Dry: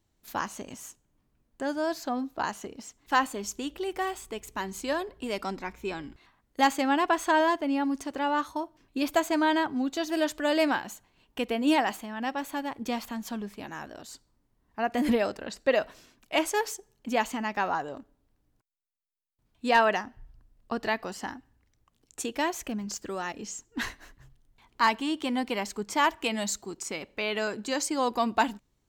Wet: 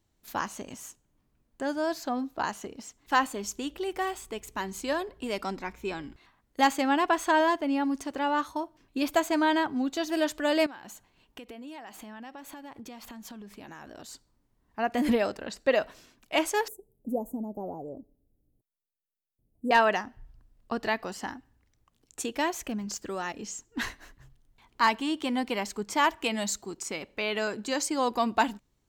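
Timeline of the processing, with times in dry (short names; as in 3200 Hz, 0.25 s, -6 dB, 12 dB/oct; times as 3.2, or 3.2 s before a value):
10.66–13.99 compressor 12:1, threshold -40 dBFS
16.68–19.71 inverse Chebyshev band-stop 1900–3800 Hz, stop band 80 dB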